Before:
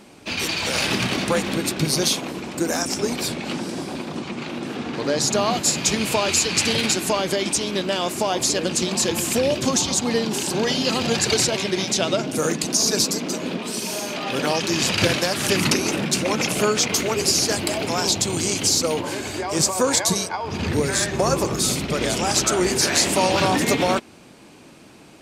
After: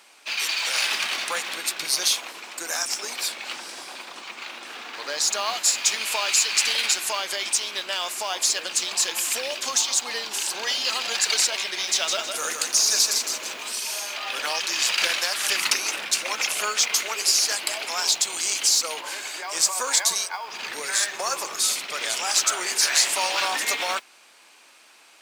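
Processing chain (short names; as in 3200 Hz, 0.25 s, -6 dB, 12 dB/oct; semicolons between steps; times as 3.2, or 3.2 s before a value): HPF 1100 Hz 12 dB/oct; modulation noise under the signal 25 dB; 11.68–13.75 lo-fi delay 0.159 s, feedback 35%, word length 8-bit, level -4.5 dB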